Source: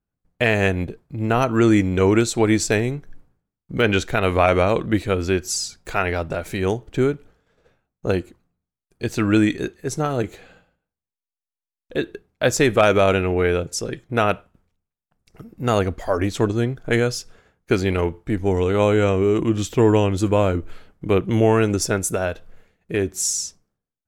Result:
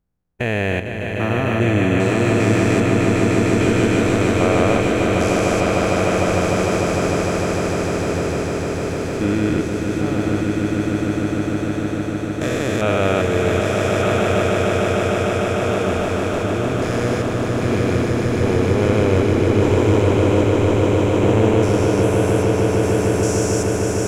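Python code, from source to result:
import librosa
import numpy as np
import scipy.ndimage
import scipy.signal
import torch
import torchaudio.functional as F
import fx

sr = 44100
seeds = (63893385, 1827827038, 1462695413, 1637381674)

y = fx.spec_steps(x, sr, hold_ms=400)
y = fx.echo_swell(y, sr, ms=151, loudest=8, wet_db=-6.0)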